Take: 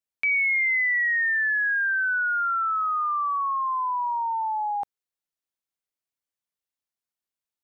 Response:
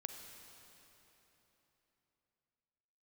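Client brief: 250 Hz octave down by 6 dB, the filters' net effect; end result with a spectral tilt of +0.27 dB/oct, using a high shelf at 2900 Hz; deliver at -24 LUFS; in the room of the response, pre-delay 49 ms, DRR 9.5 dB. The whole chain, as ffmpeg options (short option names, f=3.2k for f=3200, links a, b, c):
-filter_complex "[0:a]equalizer=f=250:t=o:g=-8.5,highshelf=f=2.9k:g=3.5,asplit=2[a][b];[1:a]atrim=start_sample=2205,adelay=49[c];[b][c]afir=irnorm=-1:irlink=0,volume=-7dB[d];[a][d]amix=inputs=2:normalize=0,volume=-2dB"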